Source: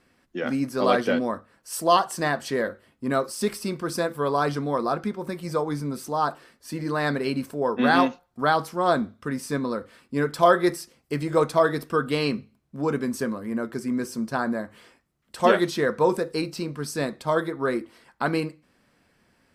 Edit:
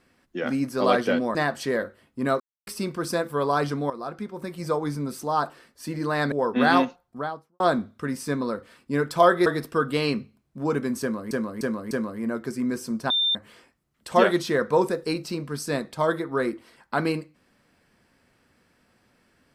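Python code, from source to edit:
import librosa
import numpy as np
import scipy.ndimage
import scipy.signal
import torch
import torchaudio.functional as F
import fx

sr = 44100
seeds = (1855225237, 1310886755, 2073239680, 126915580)

y = fx.studio_fade_out(x, sr, start_s=8.05, length_s=0.78)
y = fx.edit(y, sr, fx.cut(start_s=1.35, length_s=0.85),
    fx.silence(start_s=3.25, length_s=0.27),
    fx.fade_in_from(start_s=4.75, length_s=0.82, floor_db=-12.5),
    fx.cut(start_s=7.17, length_s=0.38),
    fx.cut(start_s=10.69, length_s=0.95),
    fx.repeat(start_s=13.19, length_s=0.3, count=4),
    fx.bleep(start_s=14.38, length_s=0.25, hz=3590.0, db=-19.5), tone=tone)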